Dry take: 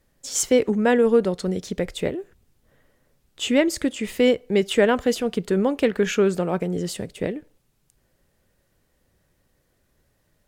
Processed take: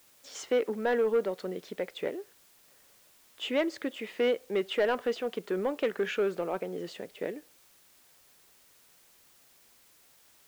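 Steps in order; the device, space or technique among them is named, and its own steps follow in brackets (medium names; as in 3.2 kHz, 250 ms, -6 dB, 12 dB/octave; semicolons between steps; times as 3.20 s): tape answering machine (band-pass 370–3100 Hz; saturation -14 dBFS, distortion -17 dB; wow and flutter; white noise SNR 28 dB); trim -5 dB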